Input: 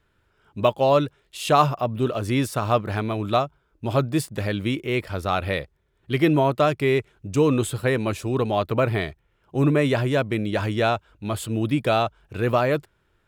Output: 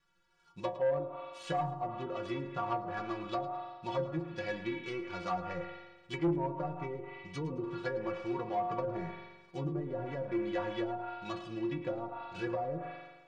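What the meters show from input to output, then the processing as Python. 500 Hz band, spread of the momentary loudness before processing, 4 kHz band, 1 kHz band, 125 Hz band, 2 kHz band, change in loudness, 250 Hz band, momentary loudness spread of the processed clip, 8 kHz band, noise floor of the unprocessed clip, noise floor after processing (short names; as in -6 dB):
-13.5 dB, 9 LU, -17.0 dB, -12.0 dB, -17.0 dB, -14.5 dB, -14.0 dB, -13.5 dB, 8 LU, under -20 dB, -67 dBFS, -62 dBFS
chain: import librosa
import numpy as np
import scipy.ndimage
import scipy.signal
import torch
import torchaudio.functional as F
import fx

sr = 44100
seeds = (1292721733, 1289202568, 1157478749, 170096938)

y = fx.dead_time(x, sr, dead_ms=0.12)
y = fx.high_shelf(y, sr, hz=2100.0, db=11.5)
y = fx.rev_spring(y, sr, rt60_s=1.2, pass_ms=(43,), chirp_ms=75, drr_db=8.0)
y = fx.env_lowpass_down(y, sr, base_hz=460.0, full_db=-14.5)
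y = scipy.signal.sosfilt(scipy.signal.butter(2, 6100.0, 'lowpass', fs=sr, output='sos'), y)
y = fx.peak_eq(y, sr, hz=980.0, db=6.0, octaves=0.65)
y = fx.stiff_resonator(y, sr, f0_hz=170.0, decay_s=0.28, stiffness=0.008)
y = fx.echo_feedback(y, sr, ms=109, feedback_pct=32, wet_db=-16.0)
y = 10.0 ** (-23.5 / 20.0) * np.tanh(y / 10.0 ** (-23.5 / 20.0))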